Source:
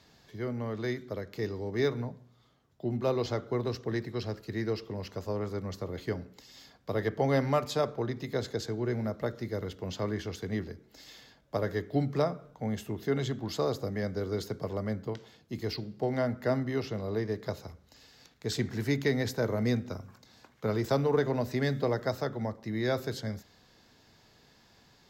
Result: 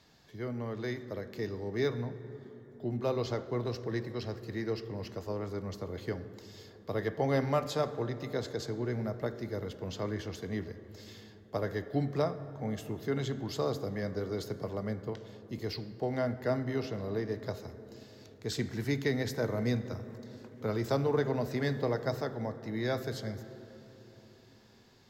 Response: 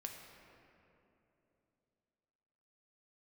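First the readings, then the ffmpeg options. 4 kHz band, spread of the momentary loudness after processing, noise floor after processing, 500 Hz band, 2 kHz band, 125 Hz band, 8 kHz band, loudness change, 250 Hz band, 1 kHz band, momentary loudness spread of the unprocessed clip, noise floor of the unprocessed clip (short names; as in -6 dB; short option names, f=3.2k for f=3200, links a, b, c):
-2.5 dB, 16 LU, -57 dBFS, -2.0 dB, -2.5 dB, -2.0 dB, -2.5 dB, -2.5 dB, -2.5 dB, -2.0 dB, 11 LU, -62 dBFS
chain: -filter_complex "[0:a]asplit=2[a][b];[1:a]atrim=start_sample=2205,asetrate=30870,aresample=44100[c];[b][c]afir=irnorm=-1:irlink=0,volume=-4.5dB[d];[a][d]amix=inputs=2:normalize=0,volume=-5.5dB"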